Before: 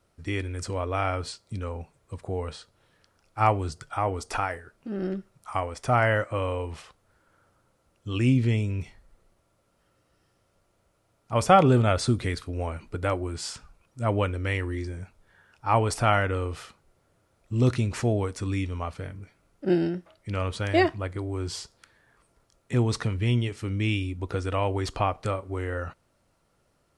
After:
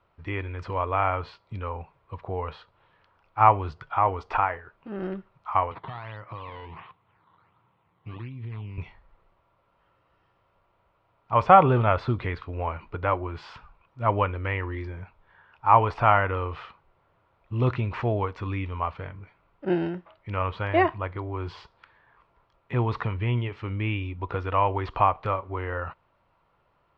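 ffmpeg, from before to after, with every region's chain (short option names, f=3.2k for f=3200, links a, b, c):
-filter_complex "[0:a]asettb=1/sr,asplit=3[a][b][c];[a]atrim=end=5.714[d];[b]atrim=start=5.71:end=8.78,asetpts=PTS-STARTPTS,afade=t=in:d=0.004:c=qsin,afade=t=out:st=3.066:d=0.004:c=qsin,acrusher=samples=12:mix=1:aa=0.000001:lfo=1:lforange=12:lforate=1.4,acompressor=threshold=-35dB:ratio=12:attack=3.2:release=140:knee=1:detection=peak,highpass=100,equalizer=f=110:t=q:w=4:g=7,equalizer=f=170:t=q:w=4:g=7,equalizer=f=570:t=q:w=4:g=-8,equalizer=f=1.5k:t=q:w=4:g=-5,lowpass=f=3.9k:w=0.5412,lowpass=f=3.9k:w=1.3066[e];[c]atrim=start=8.776[f];[d][e]acrossfade=d=0.004:c1=hsin:c2=qsin[g];[g][f]acrossfade=d=0.004:c1=qsin:c2=hsin,lowpass=f=3.5k:w=0.5412,lowpass=f=3.5k:w=1.3066,acrossover=split=2600[h][i];[i]acompressor=threshold=-47dB:ratio=4:attack=1:release=60[j];[h][j]amix=inputs=2:normalize=0,equalizer=f=250:t=o:w=0.67:g=-5,equalizer=f=1k:t=o:w=0.67:g=11,equalizer=f=2.5k:t=o:w=0.67:g=3,volume=-1dB"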